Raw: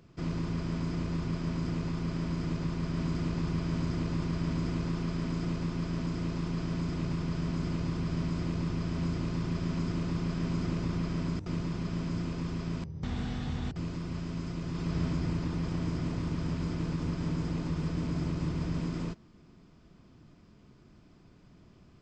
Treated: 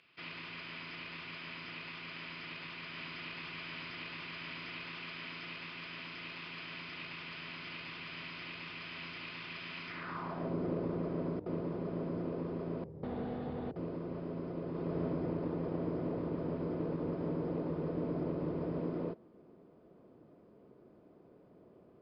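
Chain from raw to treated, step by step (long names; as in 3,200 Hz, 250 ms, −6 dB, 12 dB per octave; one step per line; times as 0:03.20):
downsampling to 11,025 Hz
band-pass filter sweep 2,600 Hz → 500 Hz, 0:09.84–0:10.54
level +9 dB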